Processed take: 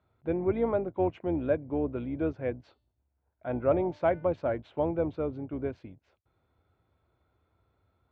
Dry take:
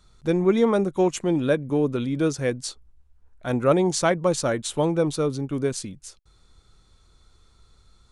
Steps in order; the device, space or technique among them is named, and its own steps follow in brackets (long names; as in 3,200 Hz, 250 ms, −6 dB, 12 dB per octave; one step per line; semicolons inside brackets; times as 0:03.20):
sub-octave bass pedal (sub-octave generator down 2 octaves, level −5 dB; loudspeaker in its box 82–2,200 Hz, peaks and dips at 140 Hz −6 dB, 200 Hz −9 dB, 430 Hz −3 dB, 650 Hz +5 dB, 1,200 Hz −7 dB, 1,800 Hz −6 dB)
0:02.60–0:04.25: hum removal 297.2 Hz, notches 17
level −6 dB